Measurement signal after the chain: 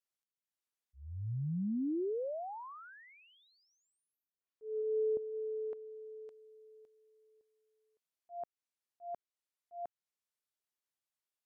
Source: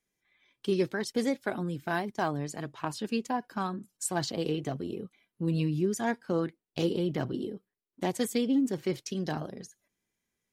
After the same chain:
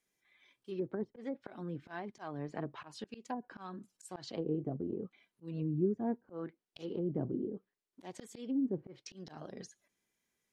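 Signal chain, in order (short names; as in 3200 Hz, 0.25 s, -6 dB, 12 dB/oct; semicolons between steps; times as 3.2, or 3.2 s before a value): low shelf 180 Hz -8 dB; auto swell 0.381 s; treble ducked by the level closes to 420 Hz, closed at -33 dBFS; gain +1 dB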